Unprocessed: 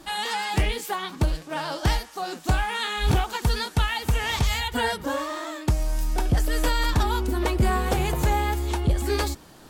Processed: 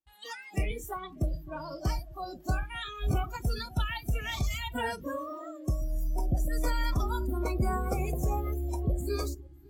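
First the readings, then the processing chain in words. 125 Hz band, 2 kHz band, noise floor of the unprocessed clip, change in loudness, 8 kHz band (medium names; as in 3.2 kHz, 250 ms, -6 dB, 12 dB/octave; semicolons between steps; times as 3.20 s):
-6.5 dB, -10.5 dB, -47 dBFS, -7.5 dB, -10.5 dB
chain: two-band feedback delay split 480 Hz, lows 128 ms, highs 551 ms, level -15 dB; gate with hold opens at -34 dBFS; spectral noise reduction 25 dB; trim -7 dB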